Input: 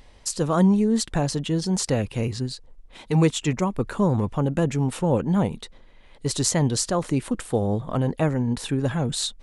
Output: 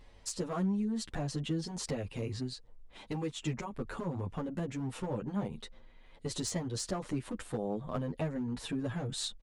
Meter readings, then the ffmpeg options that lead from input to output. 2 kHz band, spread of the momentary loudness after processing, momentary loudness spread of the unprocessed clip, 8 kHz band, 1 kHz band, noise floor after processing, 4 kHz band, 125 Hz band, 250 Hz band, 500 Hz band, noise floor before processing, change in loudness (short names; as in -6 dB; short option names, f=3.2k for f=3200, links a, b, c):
-11.5 dB, 7 LU, 8 LU, -13.0 dB, -13.0 dB, -57 dBFS, -10.5 dB, -14.0 dB, -12.5 dB, -13.5 dB, -50 dBFS, -13.0 dB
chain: -filter_complex "[0:a]highshelf=f=6.5k:g=-7,acompressor=threshold=-24dB:ratio=8,asoftclip=type=hard:threshold=-21.5dB,asplit=2[a][b];[b]adelay=8.9,afreqshift=0.48[c];[a][c]amix=inputs=2:normalize=1,volume=-3.5dB"